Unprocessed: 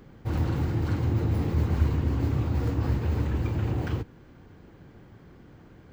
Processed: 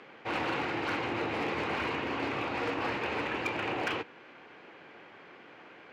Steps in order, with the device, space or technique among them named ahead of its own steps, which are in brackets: megaphone (band-pass 570–3700 Hz; peaking EQ 2.5 kHz +8.5 dB 0.59 oct; hard clipper -32.5 dBFS, distortion -22 dB); trim +7.5 dB

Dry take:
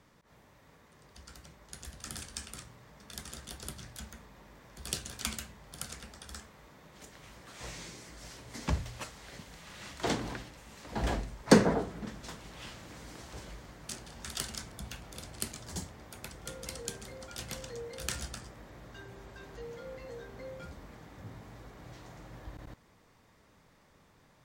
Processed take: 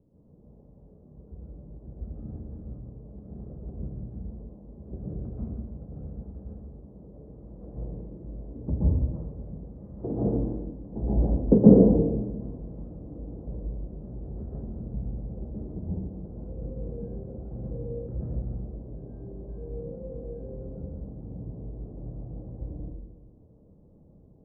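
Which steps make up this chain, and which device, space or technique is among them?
next room (low-pass 490 Hz 24 dB/octave; reverberation RT60 0.95 s, pre-delay 118 ms, DRR -7 dB); trim +2 dB

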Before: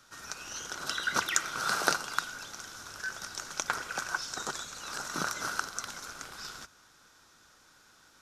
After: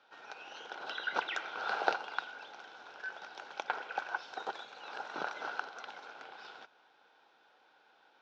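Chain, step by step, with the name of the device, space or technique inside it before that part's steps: phone earpiece (cabinet simulation 420–3300 Hz, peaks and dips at 460 Hz +4 dB, 800 Hz +9 dB, 1.2 kHz -9 dB, 1.9 kHz -6 dB); trim -1.5 dB

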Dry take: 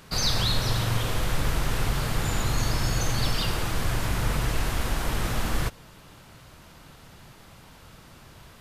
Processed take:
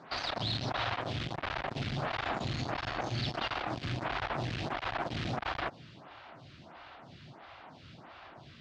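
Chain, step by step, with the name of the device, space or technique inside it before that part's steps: vibe pedal into a guitar amplifier (lamp-driven phase shifter 1.5 Hz; valve stage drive 33 dB, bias 0.55; cabinet simulation 110–4300 Hz, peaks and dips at 190 Hz -5 dB, 460 Hz -7 dB, 720 Hz +6 dB); trim +5.5 dB

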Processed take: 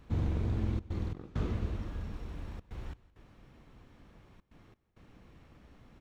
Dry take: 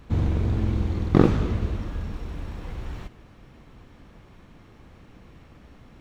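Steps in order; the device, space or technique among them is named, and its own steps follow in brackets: trance gate with a delay (trance gate "xxxxxxx.xx..xxxx" 133 bpm -24 dB; feedback delay 169 ms, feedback 50%, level -22 dB); trim -8 dB

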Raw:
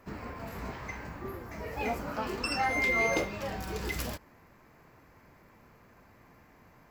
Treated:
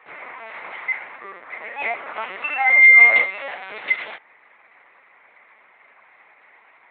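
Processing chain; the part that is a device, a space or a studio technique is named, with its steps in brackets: high-pass 180 Hz 24 dB/octave; talking toy (LPC vocoder at 8 kHz pitch kept; high-pass 690 Hz 12 dB/octave; peaking EQ 2.1 kHz +10.5 dB 0.36 oct); trim +8.5 dB

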